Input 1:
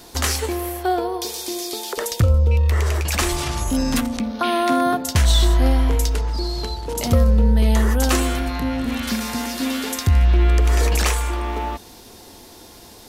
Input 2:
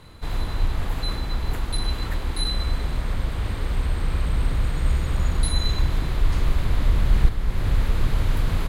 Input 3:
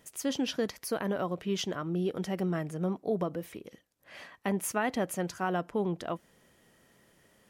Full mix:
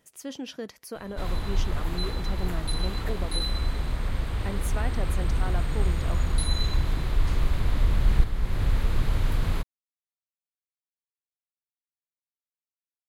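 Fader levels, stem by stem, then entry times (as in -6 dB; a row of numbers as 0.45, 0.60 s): off, -3.0 dB, -5.5 dB; off, 0.95 s, 0.00 s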